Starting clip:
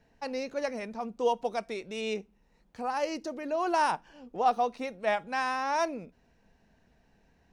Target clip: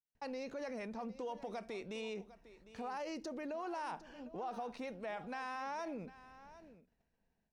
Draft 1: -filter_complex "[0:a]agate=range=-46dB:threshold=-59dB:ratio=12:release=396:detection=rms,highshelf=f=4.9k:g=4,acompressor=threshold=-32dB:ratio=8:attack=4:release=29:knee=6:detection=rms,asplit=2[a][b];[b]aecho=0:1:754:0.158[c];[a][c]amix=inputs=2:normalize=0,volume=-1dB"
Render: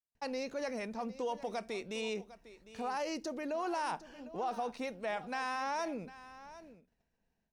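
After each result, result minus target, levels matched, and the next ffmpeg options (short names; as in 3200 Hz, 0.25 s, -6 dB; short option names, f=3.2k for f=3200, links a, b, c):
compressor: peak gain reduction -6 dB; 8000 Hz band +4.0 dB
-filter_complex "[0:a]agate=range=-46dB:threshold=-59dB:ratio=12:release=396:detection=rms,highshelf=f=4.9k:g=4,acompressor=threshold=-39dB:ratio=8:attack=4:release=29:knee=6:detection=rms,asplit=2[a][b];[b]aecho=0:1:754:0.158[c];[a][c]amix=inputs=2:normalize=0,volume=-1dB"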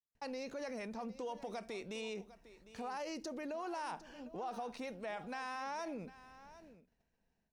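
8000 Hz band +4.5 dB
-filter_complex "[0:a]agate=range=-46dB:threshold=-59dB:ratio=12:release=396:detection=rms,highshelf=f=4.9k:g=-4,acompressor=threshold=-39dB:ratio=8:attack=4:release=29:knee=6:detection=rms,asplit=2[a][b];[b]aecho=0:1:754:0.158[c];[a][c]amix=inputs=2:normalize=0,volume=-1dB"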